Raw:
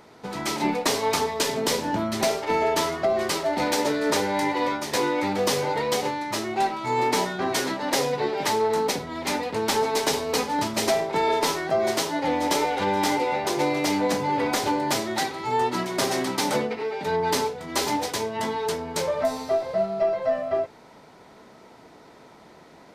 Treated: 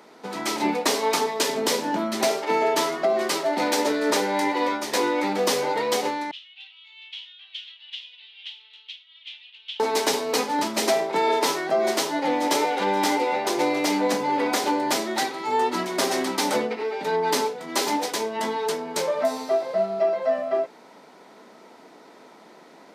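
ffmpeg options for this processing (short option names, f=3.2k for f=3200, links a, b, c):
-filter_complex "[0:a]asettb=1/sr,asplit=3[a][b][c];[a]atrim=end=6.314[d];[b]atrim=start=6.31:end=9.8,asetpts=PTS-STARTPTS,afade=t=in:d=0.004:c=qsin,afade=t=out:st=3.486:d=0.004:c=qsin,asuperpass=centerf=3100:order=4:qfactor=4[e];[c]atrim=start=9.796[f];[d][e]acrossfade=d=0.004:c1=hsin:c2=qsin[g];[g][f]acrossfade=d=0.004:c1=qsin:c2=hsin,highpass=f=200:w=0.5412,highpass=f=200:w=1.3066,volume=1dB"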